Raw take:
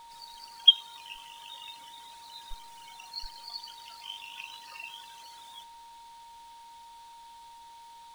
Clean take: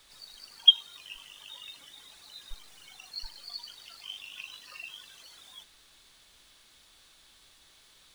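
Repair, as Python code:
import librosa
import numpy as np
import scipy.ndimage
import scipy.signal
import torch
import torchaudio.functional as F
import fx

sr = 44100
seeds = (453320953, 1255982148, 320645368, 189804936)

y = fx.notch(x, sr, hz=930.0, q=30.0)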